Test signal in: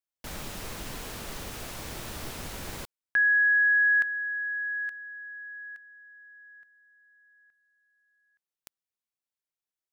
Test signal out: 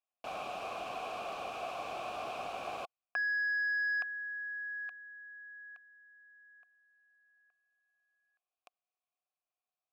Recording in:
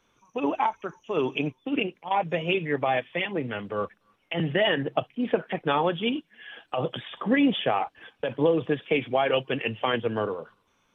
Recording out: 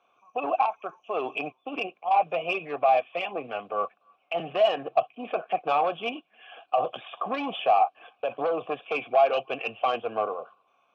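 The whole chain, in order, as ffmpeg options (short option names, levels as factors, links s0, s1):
-filter_complex "[0:a]aeval=exprs='0.335*(cos(1*acos(clip(val(0)/0.335,-1,1)))-cos(1*PI/2))+0.119*(cos(5*acos(clip(val(0)/0.335,-1,1)))-cos(5*PI/2))':c=same,asplit=3[s0][s1][s2];[s0]bandpass=f=730:t=q:w=8,volume=1[s3];[s1]bandpass=f=1090:t=q:w=8,volume=0.501[s4];[s2]bandpass=f=2440:t=q:w=8,volume=0.355[s5];[s3][s4][s5]amix=inputs=3:normalize=0,volume=1.58"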